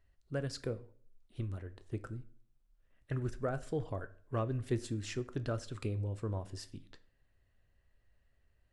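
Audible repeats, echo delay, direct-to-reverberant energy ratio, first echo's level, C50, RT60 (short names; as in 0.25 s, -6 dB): none, none, 11.5 dB, none, 18.0 dB, 0.50 s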